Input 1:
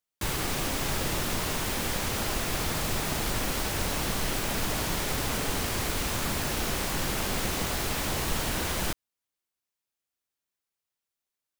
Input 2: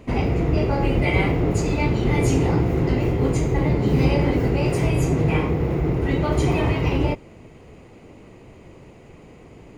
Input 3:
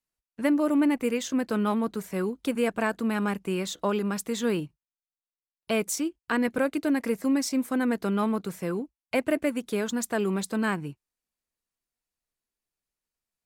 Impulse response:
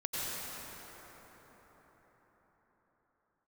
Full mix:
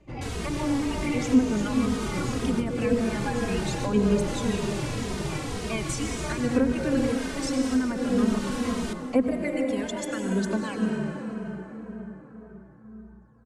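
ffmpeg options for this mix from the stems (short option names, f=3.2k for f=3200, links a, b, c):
-filter_complex "[0:a]volume=-4dB,asplit=2[a][b];[b]volume=-16dB[c];[1:a]volume=-10.5dB[d];[2:a]aeval=exprs='val(0)+0.000891*(sin(2*PI*60*n/s)+sin(2*PI*2*60*n/s)/2+sin(2*PI*3*60*n/s)/3+sin(2*PI*4*60*n/s)/4+sin(2*PI*5*60*n/s)/5)':c=same,aphaser=in_gain=1:out_gain=1:delay=1.2:decay=0.7:speed=0.76:type=triangular,volume=-4.5dB,asplit=3[e][f][g];[f]volume=-4.5dB[h];[g]apad=whole_len=511165[i];[a][i]sidechaincompress=threshold=-25dB:ratio=8:attack=16:release=544[j];[3:a]atrim=start_sample=2205[k];[c][h]amix=inputs=2:normalize=0[l];[l][k]afir=irnorm=-1:irlink=0[m];[j][d][e][m]amix=inputs=4:normalize=0,lowpass=f=9.6k:w=0.5412,lowpass=f=9.6k:w=1.3066,acrossover=split=390[n][o];[o]acompressor=threshold=-25dB:ratio=6[p];[n][p]amix=inputs=2:normalize=0,asplit=2[q][r];[r]adelay=2.9,afreqshift=-1.9[s];[q][s]amix=inputs=2:normalize=1"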